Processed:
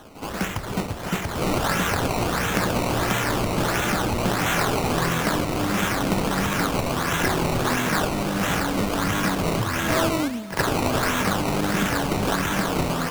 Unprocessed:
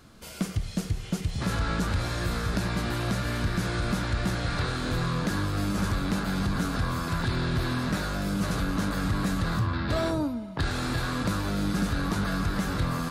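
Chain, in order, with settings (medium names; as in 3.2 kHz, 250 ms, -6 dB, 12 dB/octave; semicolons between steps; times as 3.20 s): frequency weighting D; decimation with a swept rate 18×, swing 100% 1.5 Hz; reverse echo 67 ms -11.5 dB; trim +4.5 dB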